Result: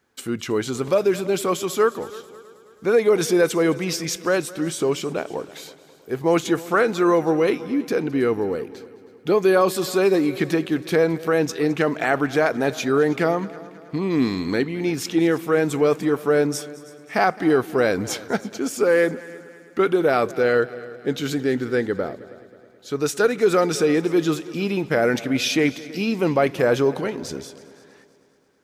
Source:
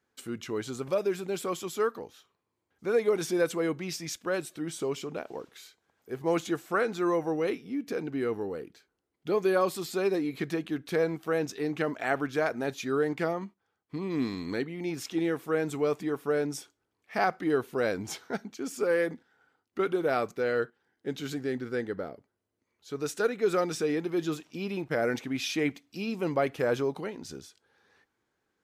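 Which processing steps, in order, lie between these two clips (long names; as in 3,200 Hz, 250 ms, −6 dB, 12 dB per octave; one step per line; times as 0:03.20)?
in parallel at +1 dB: brickwall limiter −20.5 dBFS, peak gain reduction 7.5 dB
on the sum: echo machine with several playback heads 107 ms, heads second and third, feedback 49%, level −20 dB
level +3.5 dB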